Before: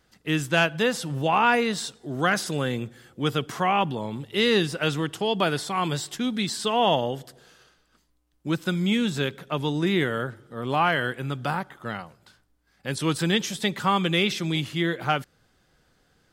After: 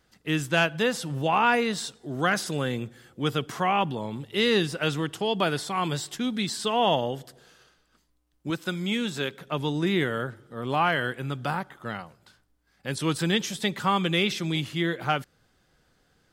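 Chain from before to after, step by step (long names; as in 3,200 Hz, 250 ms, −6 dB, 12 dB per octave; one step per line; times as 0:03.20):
0:08.50–0:09.41: low-shelf EQ 160 Hz −11 dB
level −1.5 dB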